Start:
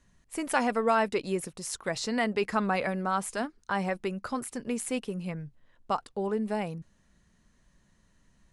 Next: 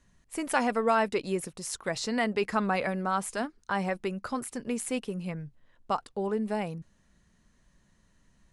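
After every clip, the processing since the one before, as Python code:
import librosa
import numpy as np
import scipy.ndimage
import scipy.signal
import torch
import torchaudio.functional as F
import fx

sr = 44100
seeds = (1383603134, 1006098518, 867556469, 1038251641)

y = x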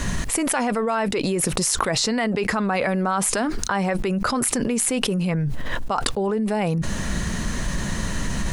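y = fx.env_flatten(x, sr, amount_pct=100)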